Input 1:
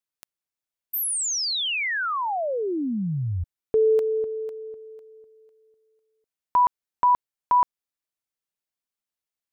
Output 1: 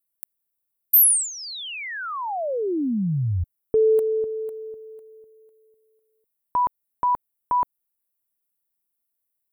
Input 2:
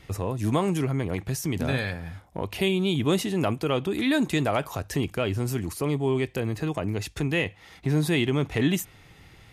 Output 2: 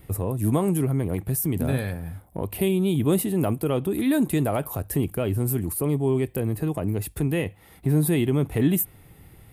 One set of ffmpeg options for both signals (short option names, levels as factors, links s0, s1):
-af "aexciter=amount=14.6:drive=0.9:freq=8700,tiltshelf=f=970:g=6,volume=0.75"